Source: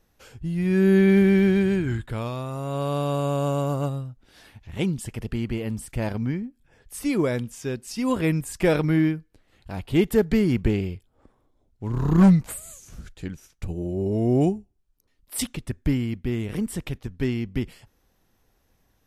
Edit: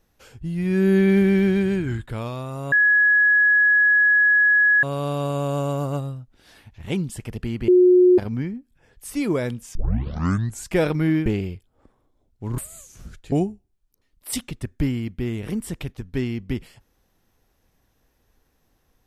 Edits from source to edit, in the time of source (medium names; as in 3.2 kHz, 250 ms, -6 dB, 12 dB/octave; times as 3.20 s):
2.72 s: add tone 1.68 kHz -13 dBFS 2.11 s
5.57–6.07 s: bleep 362 Hz -10 dBFS
7.64 s: tape start 0.94 s
9.15–10.66 s: delete
11.98–12.51 s: delete
13.25–14.38 s: delete